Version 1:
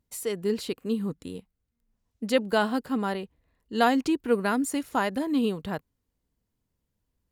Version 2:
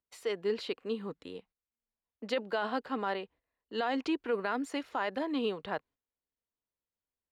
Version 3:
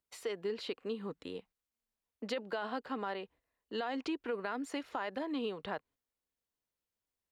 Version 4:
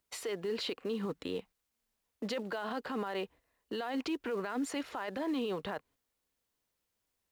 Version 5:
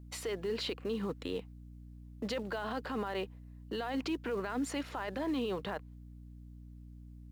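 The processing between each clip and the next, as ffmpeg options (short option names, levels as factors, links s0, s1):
-filter_complex "[0:a]agate=range=0.282:threshold=0.00224:ratio=16:detection=peak,acrossover=split=370 4700:gain=0.178 1 0.0631[s0][s1][s2];[s0][s1][s2]amix=inputs=3:normalize=0,alimiter=limit=0.0794:level=0:latency=1:release=20"
-af "acompressor=threshold=0.0126:ratio=2.5,volume=1.19"
-filter_complex "[0:a]asplit=2[s0][s1];[s1]acrusher=bits=3:mode=log:mix=0:aa=0.000001,volume=0.282[s2];[s0][s2]amix=inputs=2:normalize=0,alimiter=level_in=2.99:limit=0.0631:level=0:latency=1:release=20,volume=0.335,volume=1.88"
-af "aeval=exprs='val(0)+0.00355*(sin(2*PI*60*n/s)+sin(2*PI*2*60*n/s)/2+sin(2*PI*3*60*n/s)/3+sin(2*PI*4*60*n/s)/4+sin(2*PI*5*60*n/s)/5)':c=same"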